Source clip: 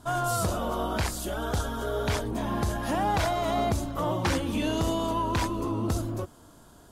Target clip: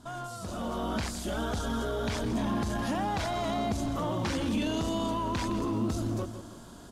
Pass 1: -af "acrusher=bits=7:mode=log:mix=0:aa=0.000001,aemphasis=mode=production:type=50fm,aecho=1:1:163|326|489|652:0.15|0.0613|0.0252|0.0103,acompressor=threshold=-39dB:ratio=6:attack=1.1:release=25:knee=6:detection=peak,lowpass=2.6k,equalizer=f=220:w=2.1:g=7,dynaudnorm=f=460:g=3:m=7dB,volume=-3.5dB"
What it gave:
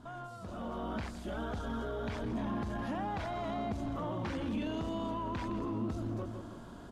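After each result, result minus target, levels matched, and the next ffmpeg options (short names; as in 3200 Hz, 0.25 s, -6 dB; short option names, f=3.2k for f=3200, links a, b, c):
compressor: peak gain reduction +6 dB; 4000 Hz band -5.0 dB
-af "acrusher=bits=7:mode=log:mix=0:aa=0.000001,aemphasis=mode=production:type=50fm,aecho=1:1:163|326|489|652:0.15|0.0613|0.0252|0.0103,acompressor=threshold=-32dB:ratio=6:attack=1.1:release=25:knee=6:detection=peak,lowpass=2.6k,equalizer=f=220:w=2.1:g=7,dynaudnorm=f=460:g=3:m=7dB,volume=-3.5dB"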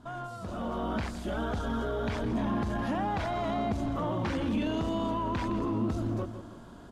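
4000 Hz band -5.5 dB
-af "acrusher=bits=7:mode=log:mix=0:aa=0.000001,aemphasis=mode=production:type=50fm,aecho=1:1:163|326|489|652:0.15|0.0613|0.0252|0.0103,acompressor=threshold=-32dB:ratio=6:attack=1.1:release=25:knee=6:detection=peak,lowpass=5.3k,equalizer=f=220:w=2.1:g=7,dynaudnorm=f=460:g=3:m=7dB,volume=-3.5dB"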